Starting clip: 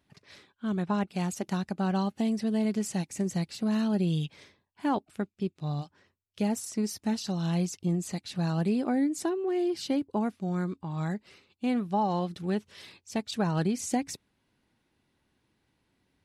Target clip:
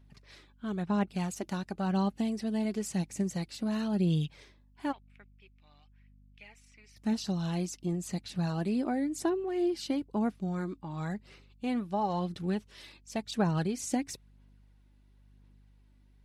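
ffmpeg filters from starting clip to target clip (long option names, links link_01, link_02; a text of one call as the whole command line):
ffmpeg -i in.wav -filter_complex "[0:a]asplit=3[link_01][link_02][link_03];[link_01]afade=type=out:start_time=4.91:duration=0.02[link_04];[link_02]bandpass=frequency=2300:width_type=q:width=4.7:csg=0,afade=type=in:start_time=4.91:duration=0.02,afade=type=out:start_time=6.96:duration=0.02[link_05];[link_03]afade=type=in:start_time=6.96:duration=0.02[link_06];[link_04][link_05][link_06]amix=inputs=3:normalize=0,aeval=exprs='val(0)+0.00126*(sin(2*PI*50*n/s)+sin(2*PI*2*50*n/s)/2+sin(2*PI*3*50*n/s)/3+sin(2*PI*4*50*n/s)/4+sin(2*PI*5*50*n/s)/5)':channel_layout=same,aphaser=in_gain=1:out_gain=1:delay=3.5:decay=0.33:speed=0.97:type=sinusoidal,volume=-3dB" out.wav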